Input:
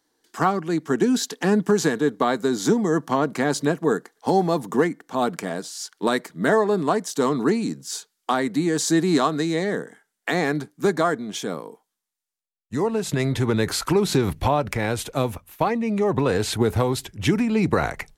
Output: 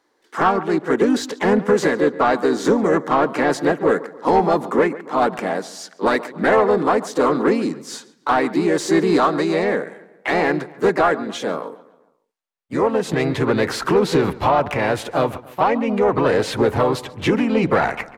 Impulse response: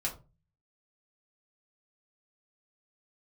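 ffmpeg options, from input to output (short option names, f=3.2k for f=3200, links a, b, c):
-filter_complex "[0:a]asplit=2[a][b];[b]adelay=140,lowpass=f=3.7k:p=1,volume=-19.5dB,asplit=2[c][d];[d]adelay=140,lowpass=f=3.7k:p=1,volume=0.47,asplit=2[e][f];[f]adelay=140,lowpass=f=3.7k:p=1,volume=0.47,asplit=2[g][h];[h]adelay=140,lowpass=f=3.7k:p=1,volume=0.47[i];[a][c][e][g][i]amix=inputs=5:normalize=0,asplit=2[j][k];[k]asetrate=52444,aresample=44100,atempo=0.840896,volume=-5dB[l];[j][l]amix=inputs=2:normalize=0,asplit=2[m][n];[n]highpass=f=720:p=1,volume=16dB,asoftclip=type=tanh:threshold=-4dB[o];[m][o]amix=inputs=2:normalize=0,lowpass=f=1.2k:p=1,volume=-6dB"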